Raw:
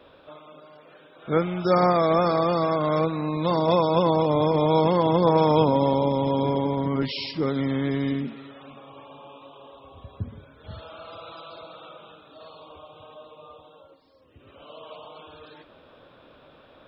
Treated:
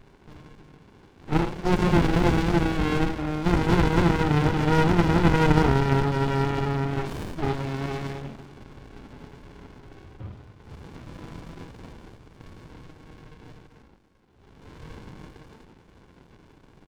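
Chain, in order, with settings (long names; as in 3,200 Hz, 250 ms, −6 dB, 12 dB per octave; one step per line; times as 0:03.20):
low shelf with overshoot 320 Hz −12 dB, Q 1.5
comb filter 0.9 ms, depth 58%
hum removal 89.44 Hz, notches 10
on a send at −2 dB: convolution reverb RT60 0.50 s, pre-delay 3 ms
on the sum: windowed peak hold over 65 samples
level +3 dB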